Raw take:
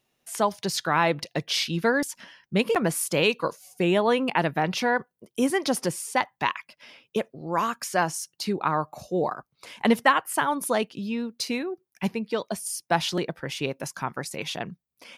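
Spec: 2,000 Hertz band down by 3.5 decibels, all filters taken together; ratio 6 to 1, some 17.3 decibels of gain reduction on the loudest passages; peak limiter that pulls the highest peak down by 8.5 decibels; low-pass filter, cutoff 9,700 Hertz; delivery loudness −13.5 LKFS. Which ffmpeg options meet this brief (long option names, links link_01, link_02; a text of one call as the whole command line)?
ffmpeg -i in.wav -af "lowpass=9700,equalizer=frequency=2000:width_type=o:gain=-4.5,acompressor=threshold=-35dB:ratio=6,volume=26.5dB,alimiter=limit=-1.5dB:level=0:latency=1" out.wav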